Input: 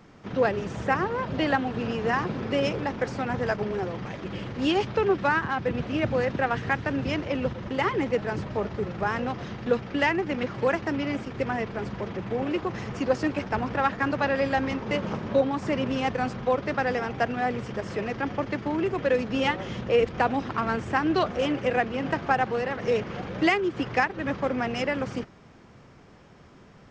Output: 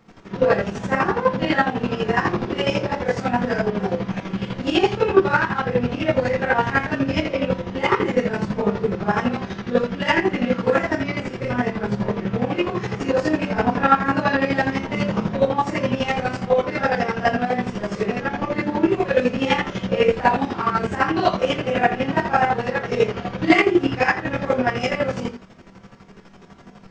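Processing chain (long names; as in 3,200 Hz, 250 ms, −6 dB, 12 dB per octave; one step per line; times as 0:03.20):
four-comb reverb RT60 0.38 s, combs from 33 ms, DRR −10 dB
multi-voice chorus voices 4, 0.1 Hz, delay 23 ms, depth 2.8 ms
square-wave tremolo 12 Hz, depth 60%, duty 40%
level +1.5 dB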